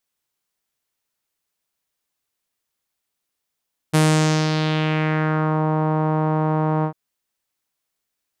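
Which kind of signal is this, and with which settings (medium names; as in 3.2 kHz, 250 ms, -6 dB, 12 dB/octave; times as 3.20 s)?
synth note saw D#3 12 dB/octave, low-pass 970 Hz, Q 2.1, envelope 3.5 oct, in 1.69 s, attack 19 ms, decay 0.54 s, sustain -6 dB, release 0.09 s, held 2.91 s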